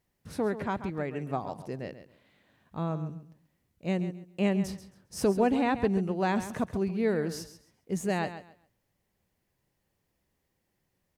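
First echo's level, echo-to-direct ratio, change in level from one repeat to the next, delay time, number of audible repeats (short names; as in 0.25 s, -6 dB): -12.0 dB, -12.0 dB, -13.0 dB, 0.135 s, 2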